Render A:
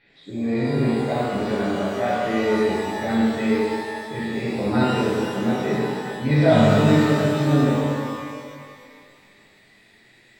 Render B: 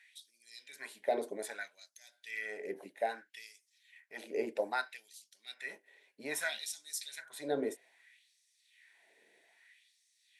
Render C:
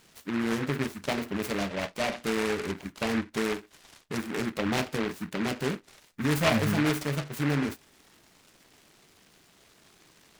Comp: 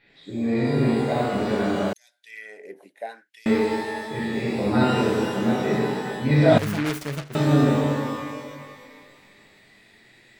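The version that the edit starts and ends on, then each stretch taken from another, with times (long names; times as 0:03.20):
A
0:01.93–0:03.46: punch in from B
0:06.58–0:07.35: punch in from C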